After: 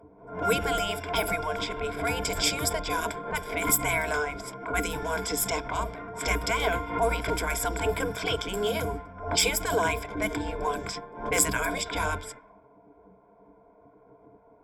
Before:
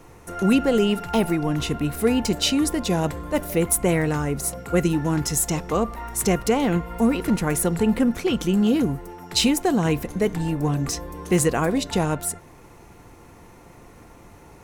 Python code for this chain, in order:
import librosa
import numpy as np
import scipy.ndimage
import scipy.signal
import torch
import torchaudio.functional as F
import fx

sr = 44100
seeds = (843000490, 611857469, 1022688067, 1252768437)

y = fx.env_lowpass(x, sr, base_hz=410.0, full_db=-17.0)
y = fx.spec_gate(y, sr, threshold_db=-10, keep='weak')
y = fx.ripple_eq(y, sr, per_octave=1.7, db=15)
y = fx.pre_swell(y, sr, db_per_s=100.0)